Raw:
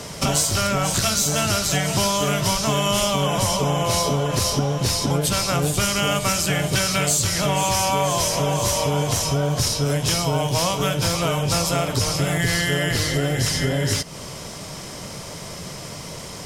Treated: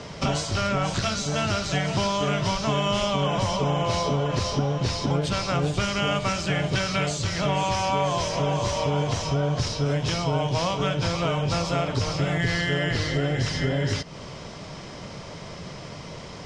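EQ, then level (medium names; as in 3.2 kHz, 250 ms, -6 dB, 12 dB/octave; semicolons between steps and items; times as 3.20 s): low-pass 6.1 kHz 12 dB/octave; distance through air 85 m; -2.5 dB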